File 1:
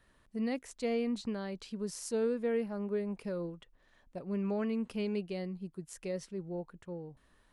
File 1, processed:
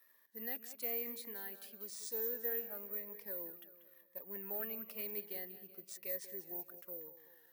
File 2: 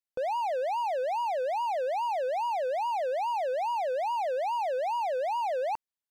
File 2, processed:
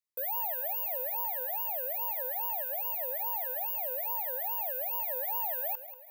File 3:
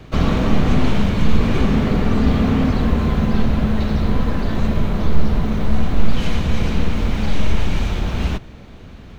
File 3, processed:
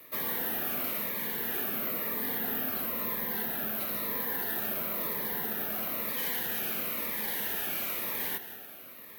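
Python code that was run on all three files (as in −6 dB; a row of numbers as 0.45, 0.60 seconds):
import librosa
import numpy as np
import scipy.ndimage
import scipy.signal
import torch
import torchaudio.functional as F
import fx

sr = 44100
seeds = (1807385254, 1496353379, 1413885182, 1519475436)

y = scipy.signal.sosfilt(scipy.signal.butter(2, 480.0, 'highpass', fs=sr, output='sos'), x)
y = fx.peak_eq(y, sr, hz=1800.0, db=8.5, octaves=0.36)
y = fx.rider(y, sr, range_db=3, speed_s=2.0)
y = 10.0 ** (-24.5 / 20.0) * np.tanh(y / 10.0 ** (-24.5 / 20.0))
y = fx.echo_feedback(y, sr, ms=188, feedback_pct=49, wet_db=-13)
y = (np.kron(y[::3], np.eye(3)[0]) * 3)[:len(y)]
y = fx.notch_cascade(y, sr, direction='falling', hz=1.0)
y = y * librosa.db_to_amplitude(-7.0)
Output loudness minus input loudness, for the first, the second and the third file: −4.5, −1.0, −10.5 LU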